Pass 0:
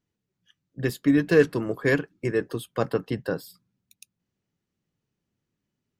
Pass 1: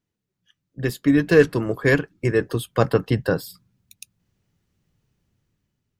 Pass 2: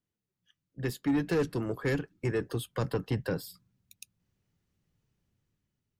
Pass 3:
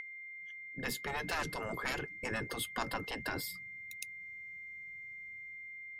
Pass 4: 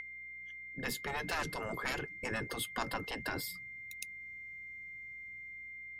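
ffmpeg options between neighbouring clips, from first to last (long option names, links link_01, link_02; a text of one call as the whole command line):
ffmpeg -i in.wav -af "dynaudnorm=framelen=260:gausssize=7:maxgain=9dB,asubboost=boost=3:cutoff=130" out.wav
ffmpeg -i in.wav -filter_complex "[0:a]acrossover=split=420|3000[link_01][link_02][link_03];[link_02]acompressor=threshold=-25dB:ratio=6[link_04];[link_01][link_04][link_03]amix=inputs=3:normalize=0,asoftclip=type=tanh:threshold=-14.5dB,volume=-7dB" out.wav
ffmpeg -i in.wav -af "aeval=exprs='val(0)+0.0141*sin(2*PI*2100*n/s)':channel_layout=same,afftfilt=real='re*lt(hypot(re,im),0.0891)':imag='im*lt(hypot(re,im),0.0891)':win_size=1024:overlap=0.75,volume=3.5dB" out.wav
ffmpeg -i in.wav -af "aeval=exprs='val(0)+0.000316*(sin(2*PI*60*n/s)+sin(2*PI*2*60*n/s)/2+sin(2*PI*3*60*n/s)/3+sin(2*PI*4*60*n/s)/4+sin(2*PI*5*60*n/s)/5)':channel_layout=same" out.wav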